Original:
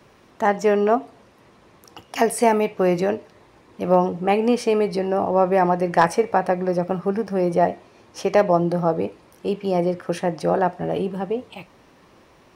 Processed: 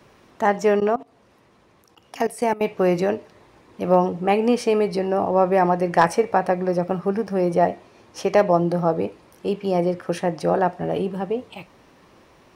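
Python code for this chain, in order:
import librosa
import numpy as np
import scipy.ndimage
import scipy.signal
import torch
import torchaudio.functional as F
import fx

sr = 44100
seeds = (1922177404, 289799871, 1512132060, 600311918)

y = fx.level_steps(x, sr, step_db=19, at=(0.8, 2.61))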